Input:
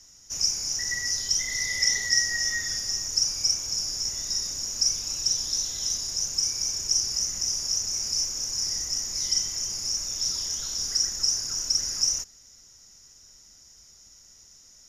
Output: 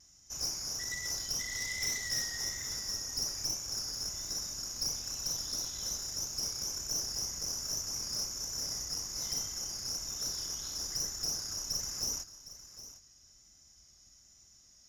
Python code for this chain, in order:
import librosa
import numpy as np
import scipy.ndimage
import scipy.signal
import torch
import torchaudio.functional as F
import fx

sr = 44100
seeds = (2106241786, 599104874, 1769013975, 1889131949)

y = fx.low_shelf(x, sr, hz=100.0, db=7.5)
y = fx.notch_comb(y, sr, f0_hz=470.0)
y = fx.vibrato(y, sr, rate_hz=1.2, depth_cents=27.0)
y = fx.tube_stage(y, sr, drive_db=24.0, bias=0.55)
y = y + 10.0 ** (-14.5 / 20.0) * np.pad(y, (int(760 * sr / 1000.0), 0))[:len(y)]
y = y * librosa.db_to_amplitude(-4.5)